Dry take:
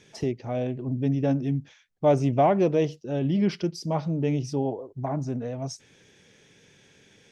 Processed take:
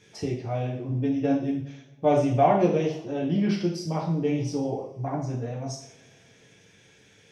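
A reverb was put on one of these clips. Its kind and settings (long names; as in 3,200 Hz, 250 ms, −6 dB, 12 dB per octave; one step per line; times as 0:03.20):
coupled-rooms reverb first 0.54 s, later 3.1 s, from −26 dB, DRR −3.5 dB
level −4 dB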